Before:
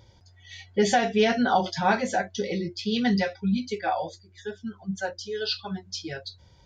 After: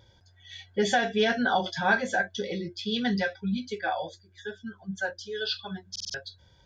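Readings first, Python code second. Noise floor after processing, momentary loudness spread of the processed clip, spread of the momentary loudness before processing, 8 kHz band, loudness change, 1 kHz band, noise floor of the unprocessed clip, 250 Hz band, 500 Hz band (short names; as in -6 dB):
-60 dBFS, 16 LU, 15 LU, -3.5 dB, -2.5 dB, -3.5 dB, -56 dBFS, -4.5 dB, -3.0 dB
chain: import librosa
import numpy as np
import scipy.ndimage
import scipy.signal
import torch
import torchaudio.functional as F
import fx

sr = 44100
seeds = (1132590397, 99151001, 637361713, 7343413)

y = fx.peak_eq(x, sr, hz=540.0, db=2.0, octaves=0.77)
y = fx.small_body(y, sr, hz=(1600.0, 3400.0), ring_ms=25, db=13)
y = fx.buffer_glitch(y, sr, at_s=(5.91,), block=2048, repeats=4)
y = F.gain(torch.from_numpy(y), -4.5).numpy()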